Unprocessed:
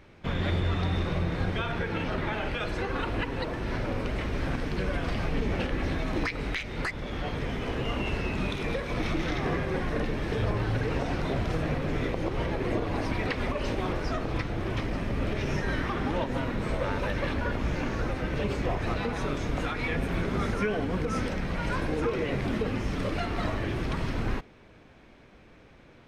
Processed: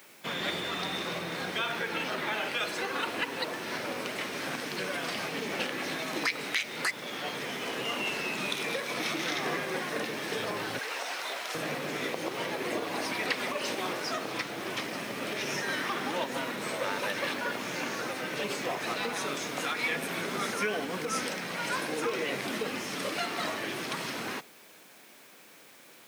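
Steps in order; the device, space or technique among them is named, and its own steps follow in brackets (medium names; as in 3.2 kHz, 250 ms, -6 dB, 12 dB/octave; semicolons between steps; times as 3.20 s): turntable without a phono preamp (RIAA curve recording; white noise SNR 24 dB); high-pass 140 Hz 24 dB/octave; 10.79–11.55 s: high-pass 700 Hz 12 dB/octave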